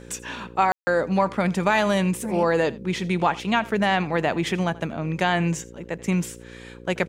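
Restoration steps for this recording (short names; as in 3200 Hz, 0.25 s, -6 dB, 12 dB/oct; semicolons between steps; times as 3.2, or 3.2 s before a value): de-hum 59.4 Hz, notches 9; room tone fill 0.72–0.87; inverse comb 83 ms -21 dB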